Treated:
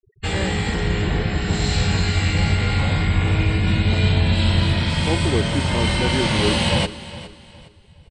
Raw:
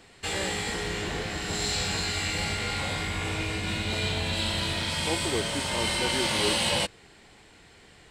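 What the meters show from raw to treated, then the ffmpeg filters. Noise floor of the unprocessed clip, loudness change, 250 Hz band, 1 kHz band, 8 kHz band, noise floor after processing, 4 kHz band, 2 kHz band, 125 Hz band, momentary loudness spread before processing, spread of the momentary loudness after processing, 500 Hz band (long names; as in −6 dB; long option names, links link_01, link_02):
−54 dBFS, +8.0 dB, +11.5 dB, +5.5 dB, −1.5 dB, −50 dBFS, +3.5 dB, +5.0 dB, +16.0 dB, 6 LU, 4 LU, +7.0 dB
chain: -filter_complex "[0:a]afftfilt=real='re*gte(hypot(re,im),0.01)':imag='im*gte(hypot(re,im),0.01)':win_size=1024:overlap=0.75,lowpass=11000,bass=frequency=250:gain=11,treble=frequency=4000:gain=-6,asplit=2[link_01][link_02];[link_02]aecho=0:1:411|822|1233:0.158|0.0491|0.0152[link_03];[link_01][link_03]amix=inputs=2:normalize=0,volume=5.5dB"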